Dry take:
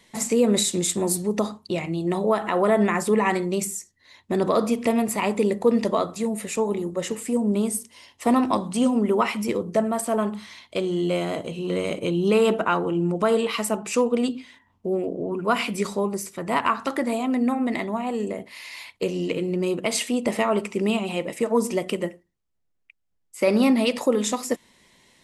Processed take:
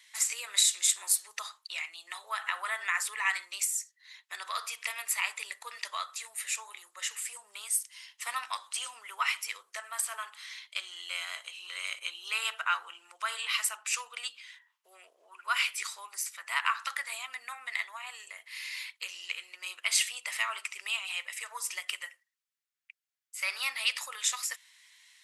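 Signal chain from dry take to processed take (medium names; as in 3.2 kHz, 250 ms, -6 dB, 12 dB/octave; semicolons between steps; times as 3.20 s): high-pass 1.4 kHz 24 dB/octave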